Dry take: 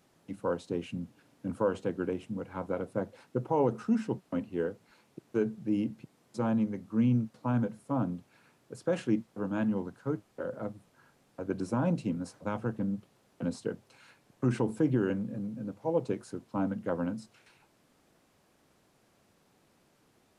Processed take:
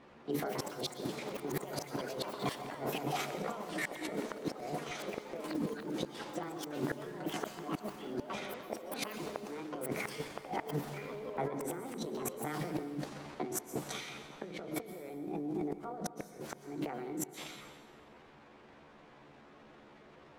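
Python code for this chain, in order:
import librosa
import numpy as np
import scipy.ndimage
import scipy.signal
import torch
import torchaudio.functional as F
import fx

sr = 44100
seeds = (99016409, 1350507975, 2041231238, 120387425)

y = fx.pitch_heads(x, sr, semitones=6.5)
y = fx.transient(y, sr, attack_db=-4, sustain_db=9)
y = fx.dynamic_eq(y, sr, hz=440.0, q=3.5, threshold_db=-47.0, ratio=4.0, max_db=5)
y = fx.over_compress(y, sr, threshold_db=-42.0, ratio=-1.0)
y = fx.env_lowpass(y, sr, base_hz=2400.0, full_db=-36.0)
y = fx.gate_flip(y, sr, shuts_db=-26.0, range_db=-33)
y = fx.echo_pitch(y, sr, ms=252, semitones=6, count=3, db_per_echo=-6.0)
y = fx.rev_plate(y, sr, seeds[0], rt60_s=1.5, hf_ratio=0.9, predelay_ms=105, drr_db=10.0)
y = y * librosa.db_to_amplitude(2.5)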